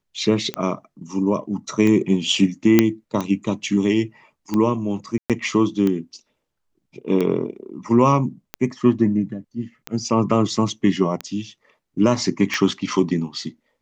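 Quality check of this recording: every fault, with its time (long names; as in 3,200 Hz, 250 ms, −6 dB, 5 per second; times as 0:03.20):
scratch tick 45 rpm −11 dBFS
0:02.79: click 0 dBFS
0:05.18–0:05.30: drop-out 117 ms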